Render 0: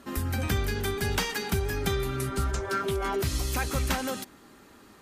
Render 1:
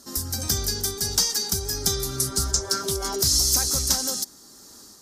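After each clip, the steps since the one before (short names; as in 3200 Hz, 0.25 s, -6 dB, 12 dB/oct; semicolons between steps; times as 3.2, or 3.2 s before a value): resonant high shelf 3700 Hz +13.5 dB, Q 3; AGC gain up to 6 dB; gain -4 dB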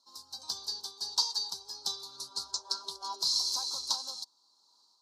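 double band-pass 2000 Hz, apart 2.1 oct; upward expander 1.5:1, over -54 dBFS; gain +4.5 dB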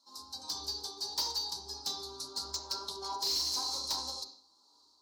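soft clip -27.5 dBFS, distortion -11 dB; on a send at -1 dB: reverb RT60 0.50 s, pre-delay 3 ms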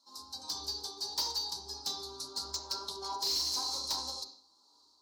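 nothing audible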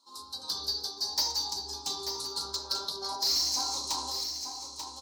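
moving spectral ripple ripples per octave 0.66, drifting +0.47 Hz, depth 7 dB; echo 0.888 s -7.5 dB; gain +3 dB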